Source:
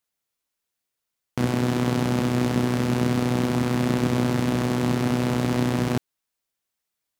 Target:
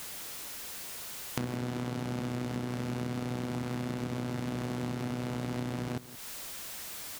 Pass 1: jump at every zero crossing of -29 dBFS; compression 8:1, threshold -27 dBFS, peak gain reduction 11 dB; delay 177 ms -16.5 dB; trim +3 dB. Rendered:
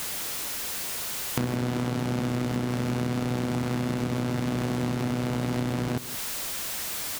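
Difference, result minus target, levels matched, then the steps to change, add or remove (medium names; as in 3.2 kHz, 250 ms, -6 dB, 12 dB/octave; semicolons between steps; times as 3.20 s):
compression: peak gain reduction -6 dB; jump at every zero crossing: distortion +9 dB
change: jump at every zero crossing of -38.5 dBFS; change: compression 8:1, threshold -34.5 dBFS, peak gain reduction 17 dB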